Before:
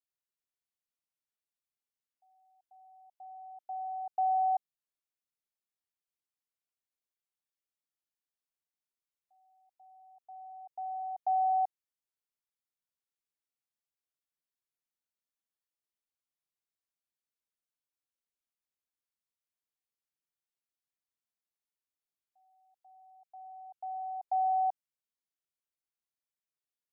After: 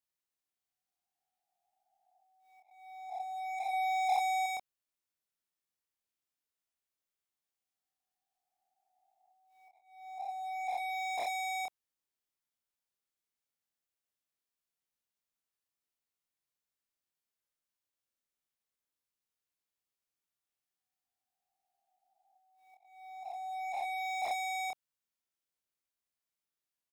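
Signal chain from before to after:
peak hold with a rise ahead of every peak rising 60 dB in 2.67 s
leveller curve on the samples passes 2
volume swells 285 ms
gain into a clipping stage and back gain 35.5 dB
double-tracking delay 27 ms −3.5 dB
0:03.73–0:04.46: hollow resonant body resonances 800 Hz, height 9 dB, ringing for 25 ms

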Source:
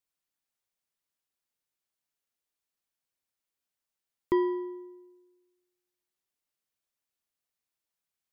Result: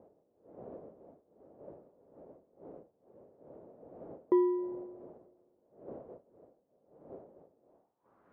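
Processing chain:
wind on the microphone 350 Hz −52 dBFS
band-pass filter sweep 560 Hz → 1,400 Hz, 0:07.63–0:08.27
tilt shelving filter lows +3.5 dB, about 1,200 Hz
level +4.5 dB

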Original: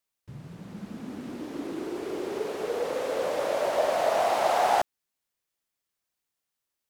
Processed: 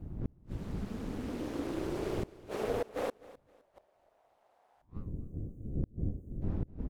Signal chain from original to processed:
wind on the microphone 110 Hz −33 dBFS
dynamic equaliser 5,500 Hz, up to −4 dB, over −47 dBFS, Q 0.83
in parallel at −2.5 dB: downward compressor 8 to 1, threshold −32 dBFS, peak gain reduction 13.5 dB
on the sum: gain on a spectral selection 0:04.88–0:06.42, 560–6,000 Hz −20 dB
flanger 1.8 Hz, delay 9.7 ms, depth 6.3 ms, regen −84%
gate with flip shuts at −21 dBFS, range −41 dB
amplitude modulation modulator 210 Hz, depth 50%
on a send: repeating echo 257 ms, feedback 29%, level −19 dB
on the sum: level +1.5 dB

